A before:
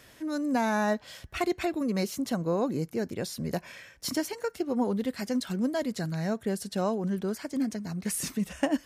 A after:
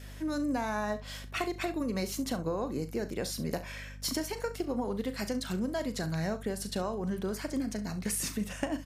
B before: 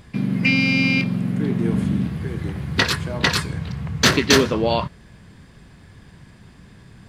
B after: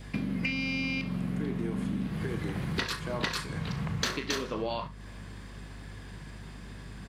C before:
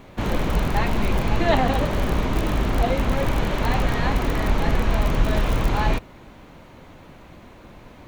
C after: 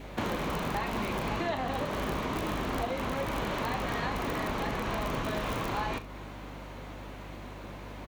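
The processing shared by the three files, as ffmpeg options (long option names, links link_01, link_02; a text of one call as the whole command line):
ffmpeg -i in.wav -filter_complex "[0:a]highpass=frequency=220:poles=1,adynamicequalizer=threshold=0.00631:dfrequency=1100:dqfactor=5.3:tfrequency=1100:tqfactor=5.3:attack=5:release=100:ratio=0.375:range=2:mode=boostabove:tftype=bell,acompressor=threshold=-31dB:ratio=12,aeval=exprs='val(0)+0.00447*(sin(2*PI*50*n/s)+sin(2*PI*2*50*n/s)/2+sin(2*PI*3*50*n/s)/3+sin(2*PI*4*50*n/s)/4+sin(2*PI*5*50*n/s)/5)':channel_layout=same,asplit=2[link_01][link_02];[link_02]aecho=0:1:38|68:0.251|0.158[link_03];[link_01][link_03]amix=inputs=2:normalize=0,volume=2dB" out.wav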